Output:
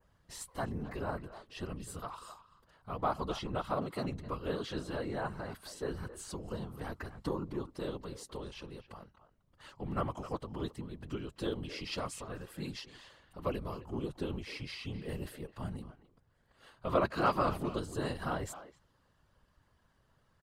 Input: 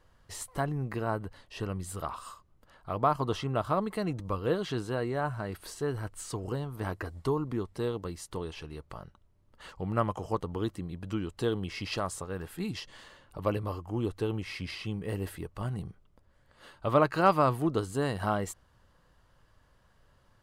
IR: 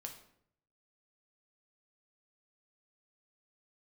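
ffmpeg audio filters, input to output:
-filter_complex "[0:a]asplit=2[a][b];[b]adelay=260,highpass=300,lowpass=3.4k,asoftclip=type=hard:threshold=-20dB,volume=-13dB[c];[a][c]amix=inputs=2:normalize=0,adynamicequalizer=threshold=0.00224:dfrequency=4200:dqfactor=1.2:tfrequency=4200:tqfactor=1.2:attack=5:release=100:ratio=0.375:range=2:mode=boostabove:tftype=bell,afftfilt=real='hypot(re,im)*cos(2*PI*random(0))':imag='hypot(re,im)*sin(2*PI*random(1))':win_size=512:overlap=0.75"

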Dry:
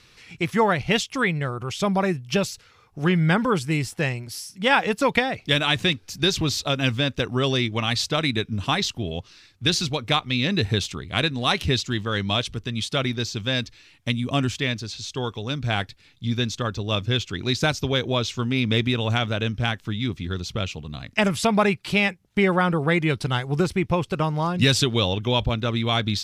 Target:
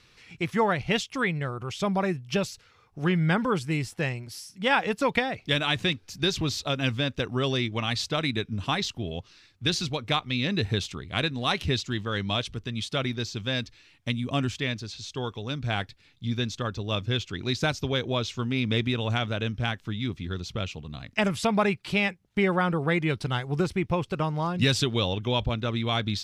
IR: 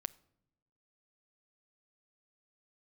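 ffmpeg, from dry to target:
-af "highshelf=f=7.1k:g=-5,volume=-4dB"

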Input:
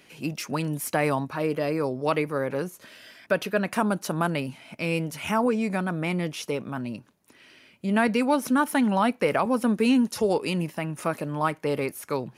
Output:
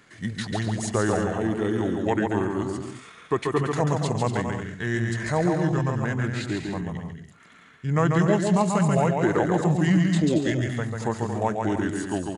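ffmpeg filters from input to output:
-af "aecho=1:1:140|231|290.2|328.6|353.6:0.631|0.398|0.251|0.158|0.1,asetrate=31183,aresample=44100,atempo=1.41421"

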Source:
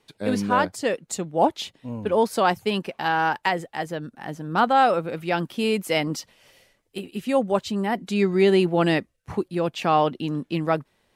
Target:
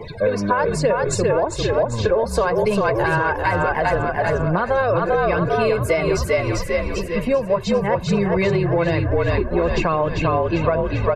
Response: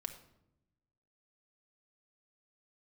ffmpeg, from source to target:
-filter_complex "[0:a]aeval=exprs='val(0)+0.5*0.0188*sgn(val(0))':c=same,acrossover=split=180[a][b];[a]acrusher=samples=35:mix=1:aa=0.000001:lfo=1:lforange=56:lforate=3.8[c];[c][b]amix=inputs=2:normalize=0,bandreject=f=390:w=12,aphaser=in_gain=1:out_gain=1:delay=3.4:decay=0.4:speed=1.1:type=triangular,afftdn=nr=30:nf=-39,equalizer=f=3.2k:t=o:w=0.3:g=-12.5,asplit=2[d][e];[e]asplit=7[f][g][h][i][j][k][l];[f]adelay=396,afreqshift=-50,volume=-4dB[m];[g]adelay=792,afreqshift=-100,volume=-9.2dB[n];[h]adelay=1188,afreqshift=-150,volume=-14.4dB[o];[i]adelay=1584,afreqshift=-200,volume=-19.6dB[p];[j]adelay=1980,afreqshift=-250,volume=-24.8dB[q];[k]adelay=2376,afreqshift=-300,volume=-30dB[r];[l]adelay=2772,afreqshift=-350,volume=-35.2dB[s];[m][n][o][p][q][r][s]amix=inputs=7:normalize=0[t];[d][t]amix=inputs=2:normalize=0,alimiter=limit=-14dB:level=0:latency=1:release=197,aemphasis=mode=reproduction:type=cd,aecho=1:1:1.9:0.66,acompressor=threshold=-22dB:ratio=6,volume=7.5dB"

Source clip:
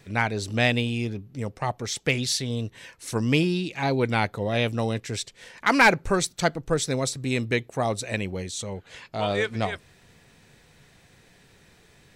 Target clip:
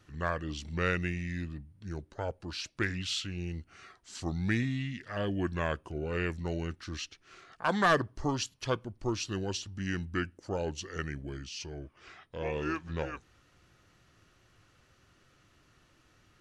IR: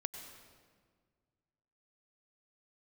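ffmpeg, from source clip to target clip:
-af "asetrate=32667,aresample=44100,volume=-8.5dB"

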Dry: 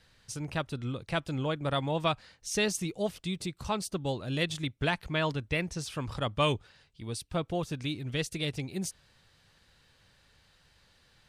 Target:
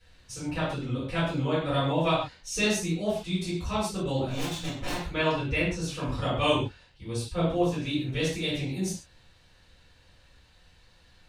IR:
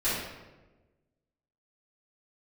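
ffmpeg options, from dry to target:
-filter_complex "[0:a]asettb=1/sr,asplit=3[a][b][c];[a]atrim=end=4.164[d];[b]atrim=start=4.16:end=5.01,asetpts=PTS-STARTPTS,afade=t=in:d=0.004:c=qsin,afade=t=out:st=0.846:d=0.004:c=qsin,aeval=exprs='0.0299*(abs(mod(val(0)/0.0299+3,4)-2)-1)':c=same[e];[c]atrim=start=5.006[f];[d][e]acrossfade=d=0.004:c1=hsin:c2=qsin[g];[g][f]acrossfade=d=0.004:c1=qsin:c2=hsin[h];[1:a]atrim=start_sample=2205,afade=t=out:st=0.29:d=0.01,atrim=end_sample=13230,asetrate=66150,aresample=44100[i];[h][i]afir=irnorm=-1:irlink=0,volume=-3.5dB"

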